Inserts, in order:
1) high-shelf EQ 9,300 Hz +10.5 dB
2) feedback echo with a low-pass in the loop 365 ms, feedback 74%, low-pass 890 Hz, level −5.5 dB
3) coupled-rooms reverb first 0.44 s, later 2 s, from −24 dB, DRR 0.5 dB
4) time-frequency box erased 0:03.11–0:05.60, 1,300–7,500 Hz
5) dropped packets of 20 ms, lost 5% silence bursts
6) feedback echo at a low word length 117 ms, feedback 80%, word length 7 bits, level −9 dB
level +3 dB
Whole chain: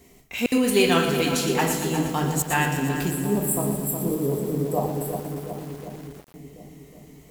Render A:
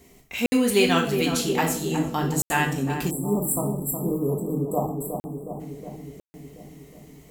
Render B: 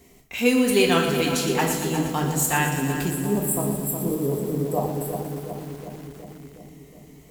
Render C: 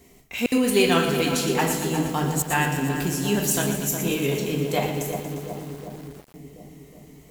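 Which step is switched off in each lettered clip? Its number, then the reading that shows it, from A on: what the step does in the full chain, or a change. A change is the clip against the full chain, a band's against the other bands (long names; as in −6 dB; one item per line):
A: 6, change in momentary loudness spread +2 LU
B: 5, change in momentary loudness spread +2 LU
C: 4, 8 kHz band +1.5 dB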